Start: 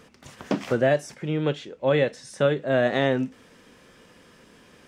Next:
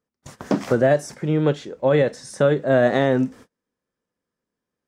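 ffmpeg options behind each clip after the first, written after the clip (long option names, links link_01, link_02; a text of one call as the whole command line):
ffmpeg -i in.wav -af "agate=range=-36dB:threshold=-46dB:ratio=16:detection=peak,equalizer=frequency=2800:width=1.4:gain=-8.5,alimiter=level_in=13dB:limit=-1dB:release=50:level=0:latency=1,volume=-7dB" out.wav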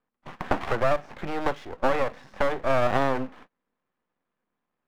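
ffmpeg -i in.wav -filter_complex "[0:a]acrossover=split=480|1300[link_01][link_02][link_03];[link_01]acompressor=threshold=-34dB:ratio=4[link_04];[link_02]acompressor=threshold=-24dB:ratio=4[link_05];[link_03]acompressor=threshold=-38dB:ratio=4[link_06];[link_04][link_05][link_06]amix=inputs=3:normalize=0,highpass=frequency=140:width=0.5412,highpass=frequency=140:width=1.3066,equalizer=frequency=450:width_type=q:width=4:gain=-4,equalizer=frequency=790:width_type=q:width=4:gain=6,equalizer=frequency=1100:width_type=q:width=4:gain=6,lowpass=frequency=2900:width=0.5412,lowpass=frequency=2900:width=1.3066,aeval=exprs='max(val(0),0)':channel_layout=same,volume=5dB" out.wav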